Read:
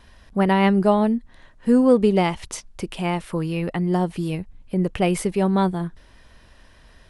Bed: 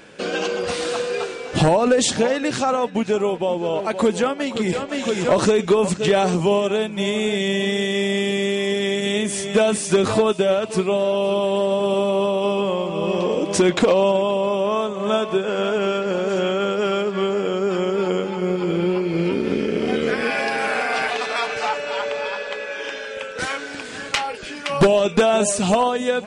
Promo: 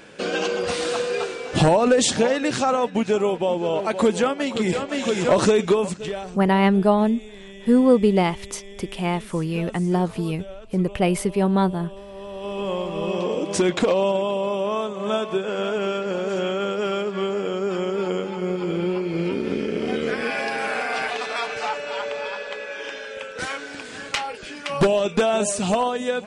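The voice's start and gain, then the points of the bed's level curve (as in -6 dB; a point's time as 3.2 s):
6.00 s, 0.0 dB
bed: 5.67 s -0.5 dB
6.44 s -20.5 dB
12.09 s -20.5 dB
12.72 s -3.5 dB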